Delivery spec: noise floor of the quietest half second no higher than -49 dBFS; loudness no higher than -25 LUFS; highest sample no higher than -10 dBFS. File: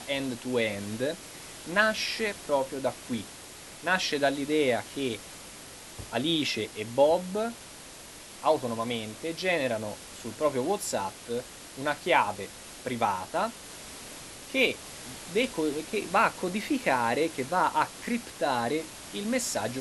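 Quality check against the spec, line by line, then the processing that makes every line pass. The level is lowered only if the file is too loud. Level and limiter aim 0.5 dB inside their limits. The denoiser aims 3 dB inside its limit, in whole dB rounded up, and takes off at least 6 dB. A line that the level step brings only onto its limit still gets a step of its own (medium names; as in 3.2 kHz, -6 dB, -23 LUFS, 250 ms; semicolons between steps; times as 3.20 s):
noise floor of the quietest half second -46 dBFS: fail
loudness -29.0 LUFS: pass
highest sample -7.5 dBFS: fail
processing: noise reduction 6 dB, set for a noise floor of -46 dBFS; peak limiter -10.5 dBFS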